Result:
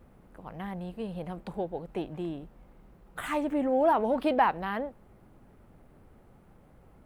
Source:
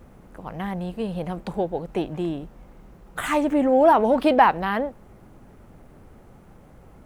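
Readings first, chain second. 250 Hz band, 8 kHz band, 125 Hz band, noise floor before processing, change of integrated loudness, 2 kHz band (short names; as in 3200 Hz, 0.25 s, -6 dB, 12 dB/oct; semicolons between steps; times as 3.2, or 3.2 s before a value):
-8.0 dB, under -10 dB, -8.0 dB, -50 dBFS, -8.0 dB, -8.0 dB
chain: bell 6400 Hz -5 dB 0.72 oct; gain -8 dB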